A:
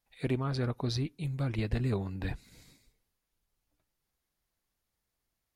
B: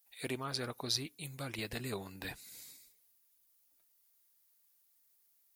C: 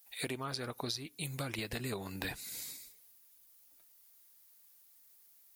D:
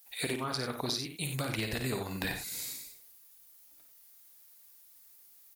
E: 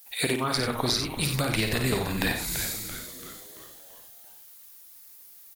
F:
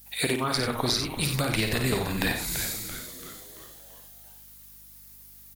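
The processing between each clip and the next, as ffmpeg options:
ffmpeg -i in.wav -af "aemphasis=mode=production:type=riaa,volume=-2.5dB" out.wav
ffmpeg -i in.wav -af "acompressor=threshold=-43dB:ratio=12,volume=8.5dB" out.wav
ffmpeg -i in.wav -af "aecho=1:1:54|91:0.447|0.376,volume=3.5dB" out.wav
ffmpeg -i in.wav -filter_complex "[0:a]asplit=7[link_01][link_02][link_03][link_04][link_05][link_06][link_07];[link_02]adelay=337,afreqshift=-150,volume=-9.5dB[link_08];[link_03]adelay=674,afreqshift=-300,volume=-15dB[link_09];[link_04]adelay=1011,afreqshift=-450,volume=-20.5dB[link_10];[link_05]adelay=1348,afreqshift=-600,volume=-26dB[link_11];[link_06]adelay=1685,afreqshift=-750,volume=-31.6dB[link_12];[link_07]adelay=2022,afreqshift=-900,volume=-37.1dB[link_13];[link_01][link_08][link_09][link_10][link_11][link_12][link_13]amix=inputs=7:normalize=0,volume=7.5dB" out.wav
ffmpeg -i in.wav -af "aeval=exprs='val(0)+0.00126*(sin(2*PI*50*n/s)+sin(2*PI*2*50*n/s)/2+sin(2*PI*3*50*n/s)/3+sin(2*PI*4*50*n/s)/4+sin(2*PI*5*50*n/s)/5)':channel_layout=same" out.wav

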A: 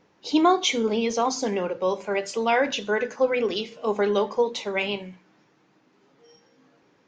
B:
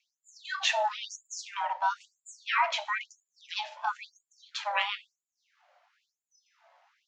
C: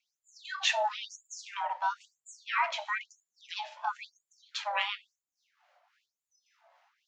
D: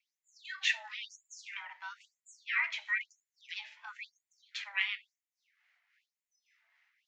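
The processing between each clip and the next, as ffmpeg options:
ffmpeg -i in.wav -af "aemphasis=mode=reproduction:type=cd,aeval=exprs='val(0)*sin(2*PI*410*n/s)':channel_layout=same,afftfilt=real='re*gte(b*sr/1024,490*pow(6900/490,0.5+0.5*sin(2*PI*1*pts/sr)))':imag='im*gte(b*sr/1024,490*pow(6900/490,0.5+0.5*sin(2*PI*1*pts/sr)))':win_size=1024:overlap=0.75,volume=2.5dB" out.wav
ffmpeg -i in.wav -filter_complex "[0:a]acrossover=split=1100[link_01][link_02];[link_01]aeval=exprs='val(0)*(1-0.5/2+0.5/2*cos(2*PI*3.6*n/s))':channel_layout=same[link_03];[link_02]aeval=exprs='val(0)*(1-0.5/2-0.5/2*cos(2*PI*3.6*n/s))':channel_layout=same[link_04];[link_03][link_04]amix=inputs=2:normalize=0" out.wav
ffmpeg -i in.wav -af "highpass=frequency=2000:width_type=q:width=3.9,volume=-7.5dB" out.wav

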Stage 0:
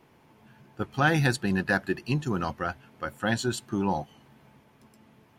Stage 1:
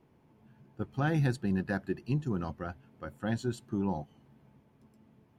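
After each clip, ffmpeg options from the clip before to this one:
ffmpeg -i in.wav -af "tiltshelf=frequency=640:gain=6,volume=-8dB" out.wav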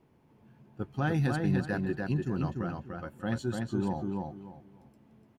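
ffmpeg -i in.wav -filter_complex "[0:a]asplit=2[link_01][link_02];[link_02]adelay=294,lowpass=frequency=4500:poles=1,volume=-3dB,asplit=2[link_03][link_04];[link_04]adelay=294,lowpass=frequency=4500:poles=1,volume=0.25,asplit=2[link_05][link_06];[link_06]adelay=294,lowpass=frequency=4500:poles=1,volume=0.25,asplit=2[link_07][link_08];[link_08]adelay=294,lowpass=frequency=4500:poles=1,volume=0.25[link_09];[link_01][link_03][link_05][link_07][link_09]amix=inputs=5:normalize=0" out.wav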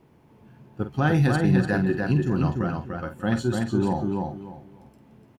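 ffmpeg -i in.wav -filter_complex "[0:a]asplit=2[link_01][link_02];[link_02]adelay=48,volume=-9.5dB[link_03];[link_01][link_03]amix=inputs=2:normalize=0,volume=7.5dB" out.wav

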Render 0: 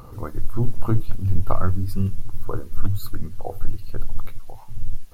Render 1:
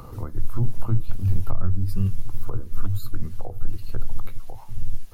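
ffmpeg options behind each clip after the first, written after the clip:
ffmpeg -i in.wav -filter_complex "[0:a]acrossover=split=200|440[link_01][link_02][link_03];[link_01]acompressor=threshold=-13dB:ratio=4[link_04];[link_02]acompressor=threshold=-46dB:ratio=4[link_05];[link_03]acompressor=threshold=-44dB:ratio=4[link_06];[link_04][link_05][link_06]amix=inputs=3:normalize=0,volume=1.5dB" out.wav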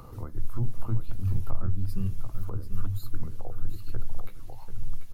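ffmpeg -i in.wav -af "aecho=1:1:739:0.355,volume=-5.5dB" out.wav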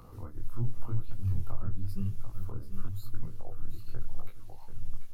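ffmpeg -i in.wav -af "flanger=delay=18.5:depth=7.8:speed=0.92,volume=-2dB" out.wav

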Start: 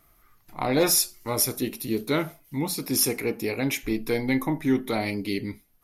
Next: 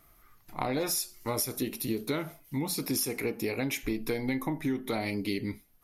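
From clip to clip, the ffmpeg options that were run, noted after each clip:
ffmpeg -i in.wav -af "acompressor=threshold=-27dB:ratio=10" out.wav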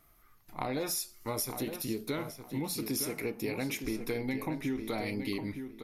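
ffmpeg -i in.wav -filter_complex "[0:a]asplit=2[link_01][link_02];[link_02]adelay=912,lowpass=frequency=3500:poles=1,volume=-7.5dB,asplit=2[link_03][link_04];[link_04]adelay=912,lowpass=frequency=3500:poles=1,volume=0.25,asplit=2[link_05][link_06];[link_06]adelay=912,lowpass=frequency=3500:poles=1,volume=0.25[link_07];[link_01][link_03][link_05][link_07]amix=inputs=4:normalize=0,volume=-3.5dB" out.wav

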